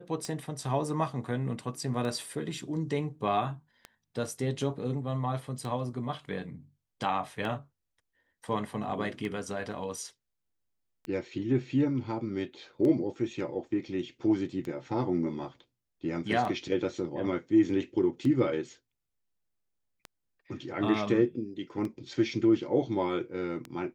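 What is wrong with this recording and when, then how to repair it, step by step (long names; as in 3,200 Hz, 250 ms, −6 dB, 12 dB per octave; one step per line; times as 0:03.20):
scratch tick 33 1/3 rpm −24 dBFS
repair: click removal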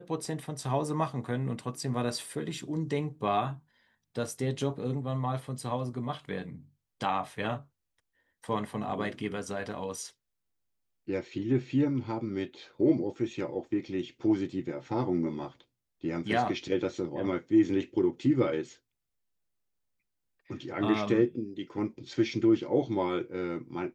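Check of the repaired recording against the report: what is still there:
none of them is left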